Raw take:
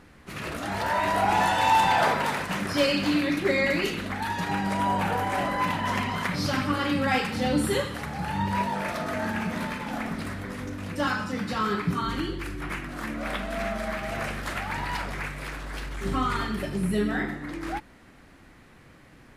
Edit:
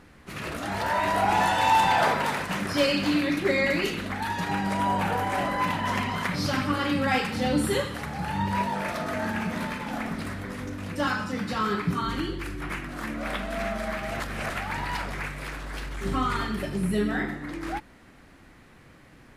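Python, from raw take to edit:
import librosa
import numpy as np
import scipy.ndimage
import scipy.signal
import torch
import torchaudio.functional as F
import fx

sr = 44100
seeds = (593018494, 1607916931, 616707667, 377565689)

y = fx.edit(x, sr, fx.reverse_span(start_s=14.2, length_s=0.3), tone=tone)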